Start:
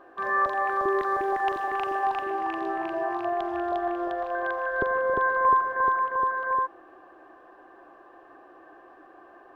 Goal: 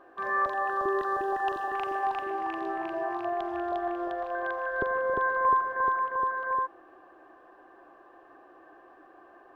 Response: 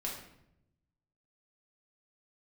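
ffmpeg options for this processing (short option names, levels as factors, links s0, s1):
-filter_complex "[0:a]asettb=1/sr,asplit=3[s0][s1][s2];[s0]atrim=end=0.534[s3];[s1]atrim=start=0.53:end=1.75,asetpts=PTS-STARTPTS,afade=t=in:d=0.004:c=qsin,afade=t=out:st=1.216:d=0.004:c=qsin,asuperstop=centerf=2200:order=8:qfactor=4[s4];[s2]atrim=start=1.746[s5];[s3][s4]acrossfade=d=0.004:c1=hsin:c2=qsin[s6];[s6][s5]acrossfade=d=0.004:c1=qsin:c2=hsin,volume=0.708"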